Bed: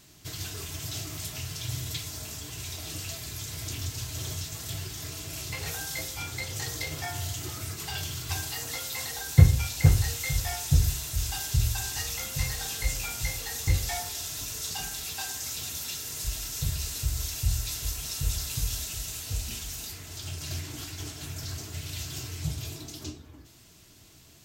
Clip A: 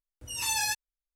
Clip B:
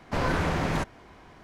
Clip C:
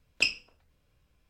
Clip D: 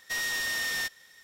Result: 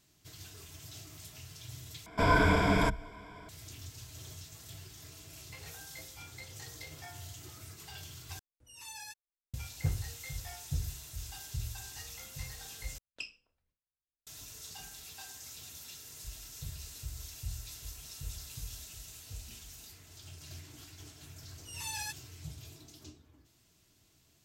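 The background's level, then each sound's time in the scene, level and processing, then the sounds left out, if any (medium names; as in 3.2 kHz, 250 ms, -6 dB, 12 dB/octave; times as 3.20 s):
bed -13 dB
2.06 s: replace with B -1.5 dB + rippled EQ curve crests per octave 1.7, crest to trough 15 dB
8.39 s: replace with A -17.5 dB
12.98 s: replace with C -17 dB + gate with hold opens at -57 dBFS, closes at -66 dBFS
21.38 s: add A -10.5 dB
not used: D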